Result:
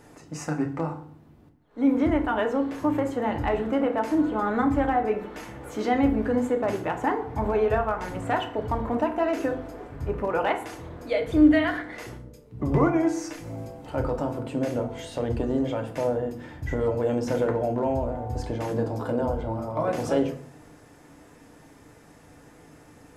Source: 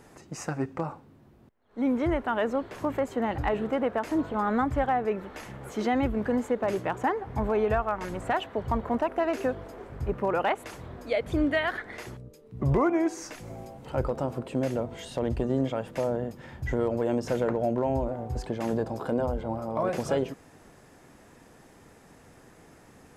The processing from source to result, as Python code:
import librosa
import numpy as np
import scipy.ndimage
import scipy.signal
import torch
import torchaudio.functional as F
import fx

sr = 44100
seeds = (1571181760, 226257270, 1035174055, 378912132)

y = fx.rev_fdn(x, sr, rt60_s=0.54, lf_ratio=1.45, hf_ratio=0.7, size_ms=20.0, drr_db=3.5)